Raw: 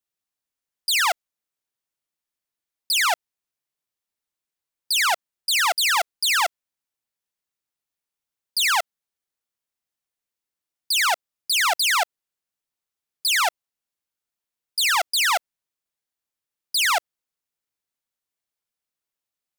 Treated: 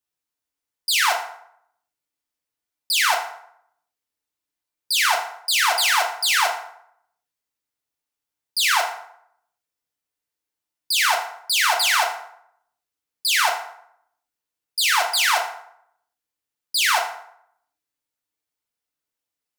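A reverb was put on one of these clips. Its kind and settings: FDN reverb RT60 0.7 s, low-frequency decay 0.8×, high-frequency decay 0.65×, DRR 0.5 dB; gain -1 dB

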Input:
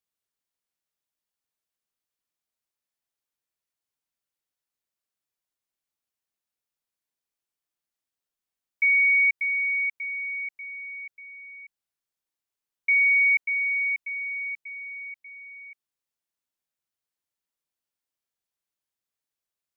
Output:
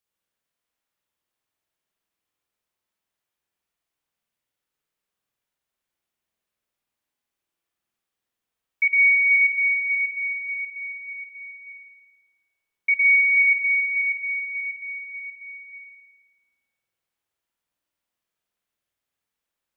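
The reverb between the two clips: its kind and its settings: spring tank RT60 1.3 s, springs 49 ms, chirp 80 ms, DRR -4 dB; gain +2 dB

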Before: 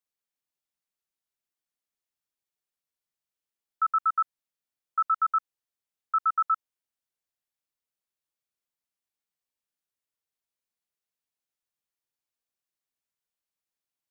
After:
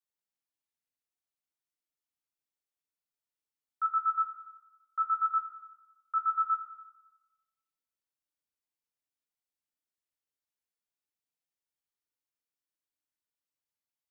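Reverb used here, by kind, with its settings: FDN reverb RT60 1.1 s, low-frequency decay 1.3×, high-frequency decay 0.85×, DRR 3 dB; gain -7 dB

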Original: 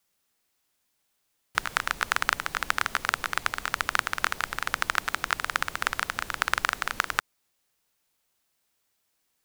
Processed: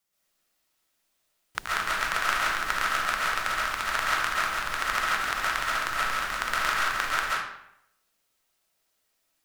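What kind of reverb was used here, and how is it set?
digital reverb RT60 0.75 s, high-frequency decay 0.8×, pre-delay 95 ms, DRR -7 dB; gain -6 dB

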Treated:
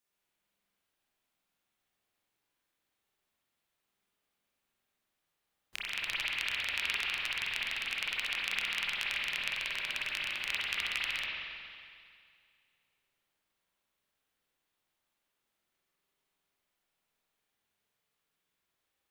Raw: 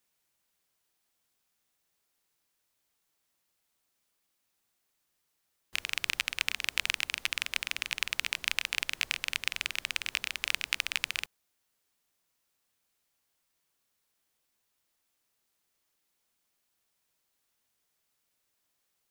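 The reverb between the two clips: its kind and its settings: spring tank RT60 2.2 s, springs 45/50 ms, chirp 20 ms, DRR -7 dB; gain -8 dB

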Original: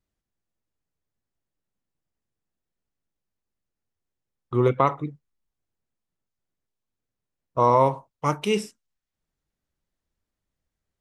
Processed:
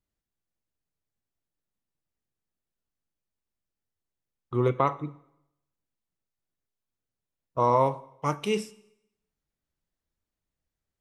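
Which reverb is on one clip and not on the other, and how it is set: plate-style reverb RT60 0.83 s, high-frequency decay 0.95×, DRR 16.5 dB; gain -4 dB

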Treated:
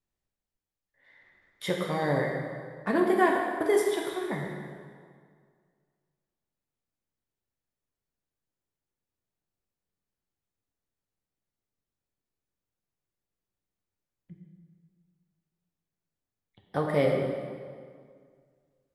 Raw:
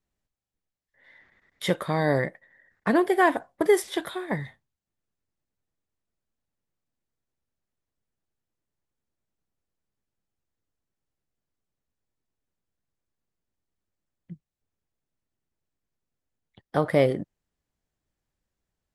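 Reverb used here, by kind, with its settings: plate-style reverb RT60 2 s, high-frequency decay 0.75×, DRR -0.5 dB; gain -6 dB

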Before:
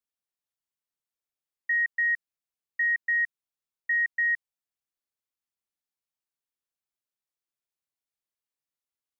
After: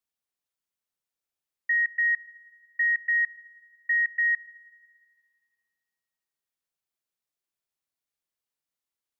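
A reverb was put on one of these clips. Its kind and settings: Schroeder reverb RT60 2 s, combs from 28 ms, DRR 18.5 dB; gain +1.5 dB

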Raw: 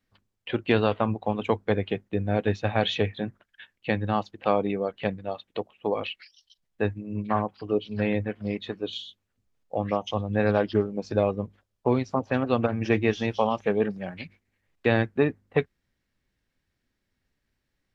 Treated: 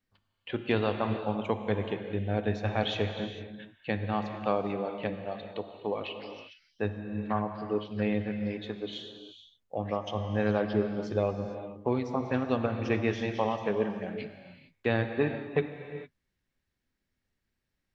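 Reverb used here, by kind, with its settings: non-linear reverb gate 0.48 s flat, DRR 6 dB; gain -5.5 dB

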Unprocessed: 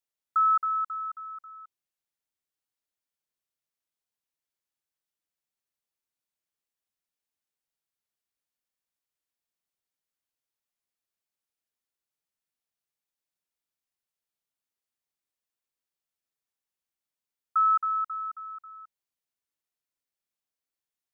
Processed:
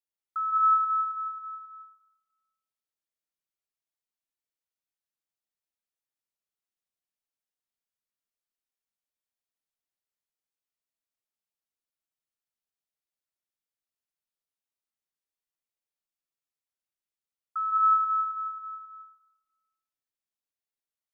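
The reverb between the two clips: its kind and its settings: digital reverb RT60 1.1 s, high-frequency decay 0.9×, pre-delay 0.12 s, DRR 2 dB; gain -7.5 dB

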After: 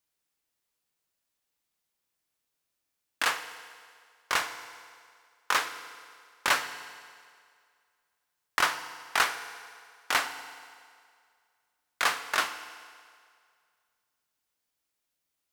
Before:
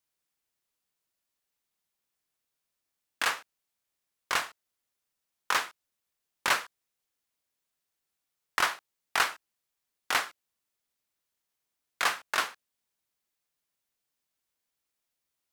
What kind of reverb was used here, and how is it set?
FDN reverb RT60 2.1 s, low-frequency decay 0.75×, high-frequency decay 0.9×, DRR 9 dB; gain +1 dB

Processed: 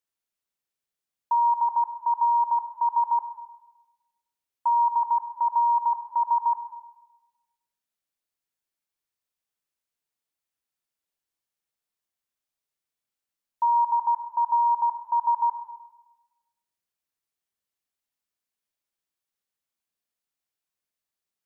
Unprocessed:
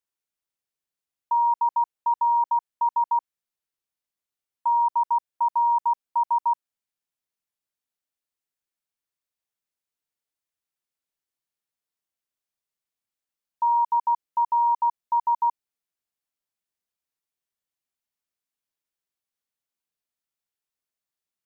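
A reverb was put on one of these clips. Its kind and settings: Schroeder reverb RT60 1.1 s, combs from 29 ms, DRR 7.5 dB

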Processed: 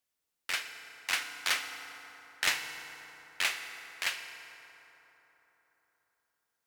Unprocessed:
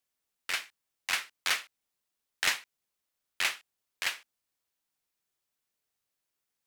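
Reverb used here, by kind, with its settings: FDN reverb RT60 3.9 s, high-frequency decay 0.5×, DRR 6 dB; gain -1 dB

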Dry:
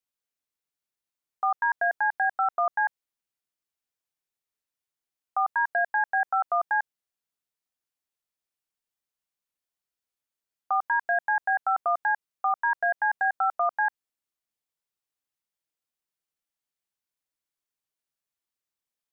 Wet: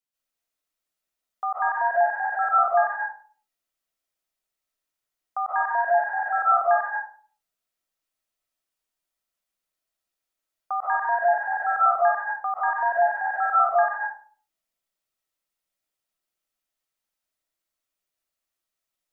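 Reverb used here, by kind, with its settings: digital reverb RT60 0.45 s, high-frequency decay 0.5×, pre-delay 0.105 s, DRR -7 dB; gain -2.5 dB

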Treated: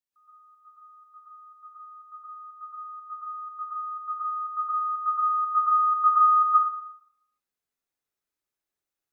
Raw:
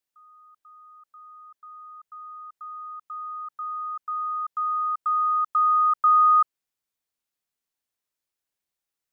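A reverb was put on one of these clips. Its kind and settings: plate-style reverb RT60 0.74 s, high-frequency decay 0.35×, pre-delay 0.105 s, DRR -8 dB; gain -9 dB

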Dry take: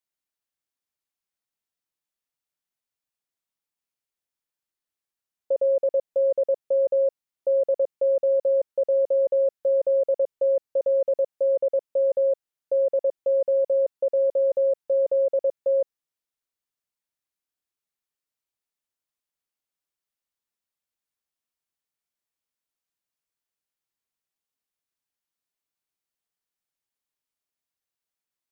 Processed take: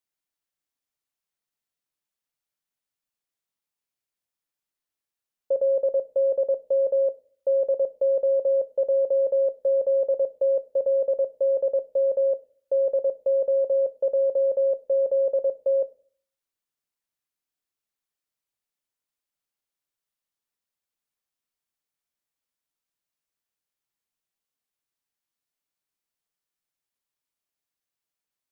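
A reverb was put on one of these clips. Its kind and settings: shoebox room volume 380 m³, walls furnished, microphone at 0.36 m

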